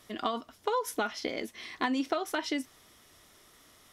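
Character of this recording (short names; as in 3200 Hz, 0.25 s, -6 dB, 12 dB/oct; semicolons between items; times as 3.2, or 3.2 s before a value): noise floor -60 dBFS; spectral tilt -2.5 dB/oct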